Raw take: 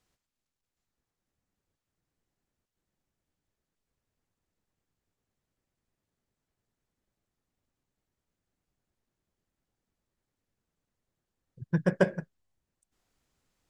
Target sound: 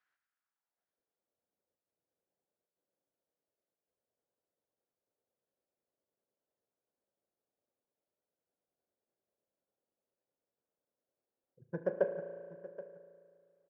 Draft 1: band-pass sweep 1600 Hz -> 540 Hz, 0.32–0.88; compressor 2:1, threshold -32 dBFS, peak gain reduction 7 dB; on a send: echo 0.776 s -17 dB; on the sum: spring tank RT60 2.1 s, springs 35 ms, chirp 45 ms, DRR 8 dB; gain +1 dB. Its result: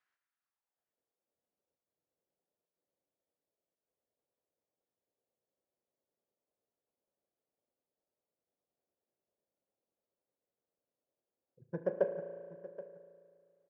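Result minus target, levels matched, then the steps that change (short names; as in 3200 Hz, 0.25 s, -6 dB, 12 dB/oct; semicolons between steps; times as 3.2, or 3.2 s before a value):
2000 Hz band -3.5 dB
add after compressor: bell 1500 Hz +4.5 dB 0.33 oct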